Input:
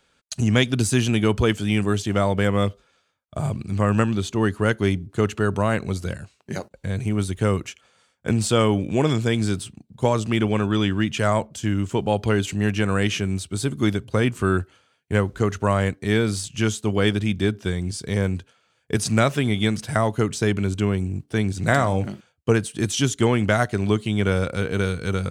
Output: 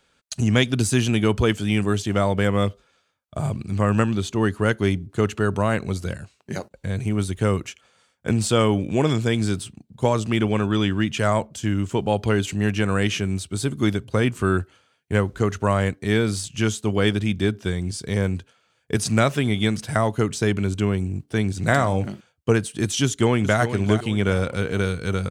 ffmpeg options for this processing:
-filter_complex "[0:a]asplit=2[a][b];[b]afade=t=in:st=23.04:d=0.01,afade=t=out:st=23.6:d=0.01,aecho=0:1:400|800|1200|1600:0.316228|0.126491|0.0505964|0.0202386[c];[a][c]amix=inputs=2:normalize=0"

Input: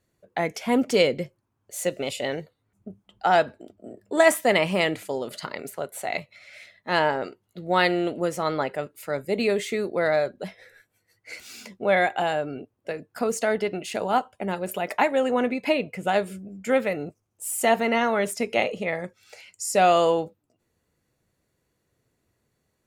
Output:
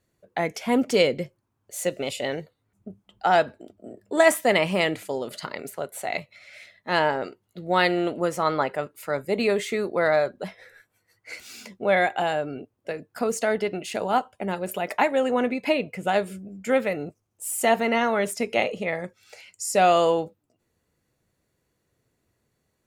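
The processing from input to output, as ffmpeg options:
-filter_complex "[0:a]asettb=1/sr,asplit=3[a][b][c];[a]atrim=end=7.974[d];[b]atrim=start=7.97:end=11.36,asetpts=PTS-STARTPTS,afade=t=in:d=0.004:c=qsin,afade=t=out:st=3.386:d=0.004:c=qsin,equalizer=f=1.1k:w=1.4:g=5[e];[c]atrim=start=11.356[f];[d][e]acrossfade=d=0.004:c1=hsin:c2=qsin[g];[g][f]acrossfade=d=0.004:c1=qsin:c2=hsin"

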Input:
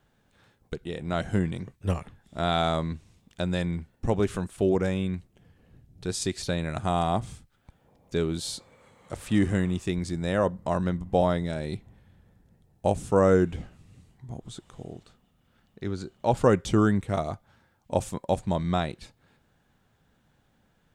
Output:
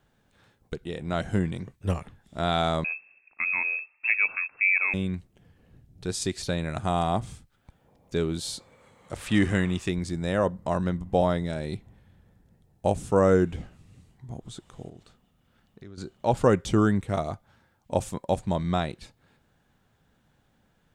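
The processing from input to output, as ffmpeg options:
-filter_complex "[0:a]asettb=1/sr,asplit=3[a][b][c];[a]atrim=end=2.844[d];[b]atrim=start=2.84:end=4.94,asetpts=PTS-STARTPTS,afade=t=in:d=0.004:c=qsin,afade=t=out:st=2.096:d=0.004:c=qsin,lowpass=f=2.3k:t=q:w=0.5098,lowpass=f=2.3k:t=q:w=0.6013,lowpass=f=2.3k:t=q:w=0.9,lowpass=f=2.3k:t=q:w=2.563,afreqshift=-2700[e];[c]atrim=start=4.936[f];[d][e]acrossfade=d=0.004:c1=hsin:c2=qsin[g];[g][f]acrossfade=d=0.004:c1=qsin:c2=hsin,asettb=1/sr,asplit=3[h][i][j];[h]atrim=end=9.164[k];[i]atrim=start=9.16:end=9.89,asetpts=PTS-STARTPTS,afade=t=in:d=0.004:c=qsin,afade=t=out:st=0.726:d=0.004:c=qsin,equalizer=f=2.3k:w=0.46:g=6.5[l];[j]atrim=start=9.886[m];[k][l]acrossfade=d=0.004:c1=hsin:c2=qsin[n];[n][m]acrossfade=d=0.004:c1=qsin:c2=hsin,asettb=1/sr,asplit=3[o][p][q];[o]atrim=end=14.894[r];[p]atrim=start=14.89:end=15.98,asetpts=PTS-STARTPTS,afade=t=in:d=0.004:c=qsin,afade=t=out:st=1.086:d=0.004:c=qsin,acompressor=threshold=-42dB:ratio=5:attack=3.2:release=140:knee=1:detection=peak[s];[q]atrim=start=15.976[t];[r][s]acrossfade=d=0.004:c1=hsin:c2=qsin[u];[u][t]acrossfade=d=0.004:c1=qsin:c2=hsin"

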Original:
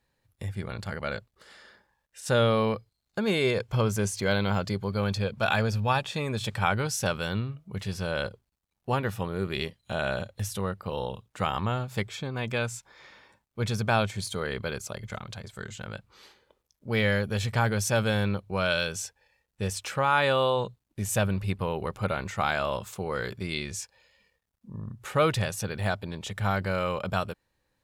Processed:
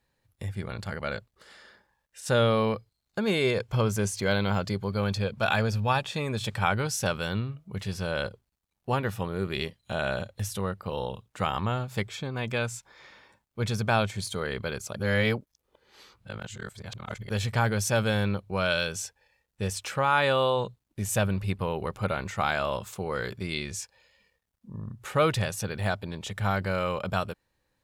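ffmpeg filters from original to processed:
-filter_complex "[0:a]asplit=3[a][b][c];[a]atrim=end=14.962[d];[b]atrim=start=14.958:end=17.302,asetpts=PTS-STARTPTS,areverse[e];[c]atrim=start=17.298[f];[d][e]acrossfade=d=0.004:c1=hsin:c2=hsin[g];[g][f]acrossfade=d=0.004:c1=hsin:c2=hsin"

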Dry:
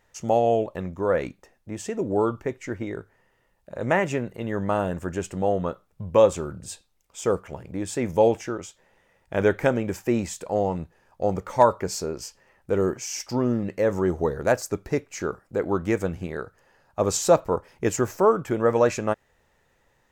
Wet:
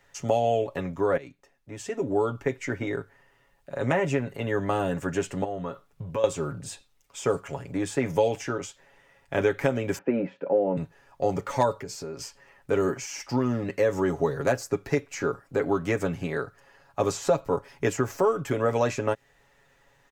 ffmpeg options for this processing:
-filter_complex "[0:a]asettb=1/sr,asplit=3[a][b][c];[a]atrim=end=5.444[d];[b]atrim=start=5.44:end=6.24,asetpts=PTS-STARTPTS,afade=t=in:d=0.004:c=qsin,afade=t=out:st=0.796:d=0.004:c=qsin,acompressor=threshold=-31dB:ratio=4:attack=3.2:release=140:knee=1:detection=peak[e];[c]atrim=start=6.236[f];[d][e]acrossfade=d=0.004:c1=hsin:c2=qsin[g];[g][f]acrossfade=d=0.004:c1=qsin:c2=hsin,asettb=1/sr,asplit=3[h][i][j];[h]atrim=end=7.274[k];[i]atrim=start=7.27:end=7.78,asetpts=PTS-STARTPTS,afade=t=in:d=0.004:c=qsin,afade=t=out:st=0.506:d=0.004:c=qsin,equalizer=f=7.5k:w=2.4:g=6[l];[j]atrim=start=7.776[m];[k][l]acrossfade=d=0.004:c1=hsin:c2=qsin[n];[n][m]acrossfade=d=0.004:c1=qsin:c2=hsin,asettb=1/sr,asplit=3[o][p][q];[o]atrim=end=9.984[r];[p]atrim=start=9.98:end=10.77,asetpts=PTS-STARTPTS,afade=t=in:d=0.004:c=qsin,afade=t=out:st=0.786:d=0.004:c=qsin,highpass=f=170:w=0.5412,highpass=f=170:w=1.3066,equalizer=f=190:t=q:w=4:g=5,equalizer=f=290:t=q:w=4:g=4,equalizer=f=530:t=q:w=4:g=9,equalizer=f=750:t=q:w=4:g=-4,equalizer=f=1.1k:t=q:w=4:g=-10,equalizer=f=1.9k:t=q:w=4:g=-8,lowpass=f=2k:w=0.5412,lowpass=f=2k:w=1.3066[s];[q]atrim=start=10.766[t];[r][s]acrossfade=d=0.004:c1=hsin:c2=qsin[u];[u][t]acrossfade=d=0.004:c1=qsin:c2=hsin,asettb=1/sr,asplit=3[v][w][x];[v]atrim=end=11.754[y];[w]atrim=start=11.75:end=12.21,asetpts=PTS-STARTPTS,afade=t=in:d=0.004:c=qsin,afade=t=out:st=0.456:d=0.004:c=qsin,acompressor=threshold=-35dB:ratio=4:attack=3.2:release=140:knee=1:detection=peak[z];[x]atrim=start=12.206[aa];[y][z]acrossfade=d=0.004:c1=hsin:c2=qsin[ab];[ab][aa]acrossfade=d=0.004:c1=qsin:c2=hsin,asplit=2[ac][ad];[ac]atrim=end=1.17,asetpts=PTS-STARTPTS,afade=t=out:st=1.166:d=0.004:c=hsin:silence=0.158489[ae];[ad]atrim=start=1.17,asetpts=PTS-STARTPTS,afade=t=in:d=1.43:silence=0.158489[af];[ae][af]concat=n=2:v=0:a=1,equalizer=f=2.5k:t=o:w=2.8:g=4,aecho=1:1:7.2:0.66,acrossover=split=87|640|2300[ag][ah][ai][aj];[ag]acompressor=threshold=-48dB:ratio=4[ak];[ah]acompressor=threshold=-22dB:ratio=4[al];[ai]acompressor=threshold=-32dB:ratio=4[am];[aj]acompressor=threshold=-38dB:ratio=4[an];[ak][al][am][an]amix=inputs=4:normalize=0"

